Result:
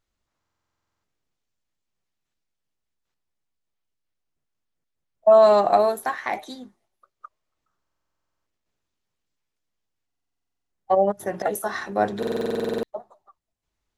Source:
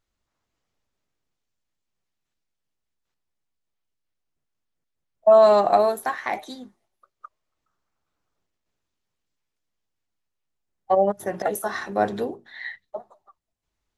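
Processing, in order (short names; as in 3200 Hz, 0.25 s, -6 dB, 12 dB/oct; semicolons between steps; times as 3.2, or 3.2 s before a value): stuck buffer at 0.39/7.81/10.06/12.18, samples 2048, times 13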